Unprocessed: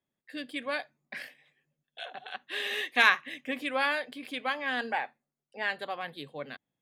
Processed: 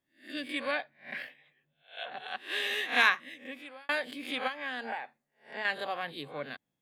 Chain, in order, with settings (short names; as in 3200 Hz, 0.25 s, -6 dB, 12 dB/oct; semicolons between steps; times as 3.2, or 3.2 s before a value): spectral swells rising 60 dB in 0.34 s; 0.71–2.12 band shelf 7800 Hz -12.5 dB; 2.63–3.89 fade out; 4.47–5.65 compressor 10:1, threshold -33 dBFS, peak gain reduction 9.5 dB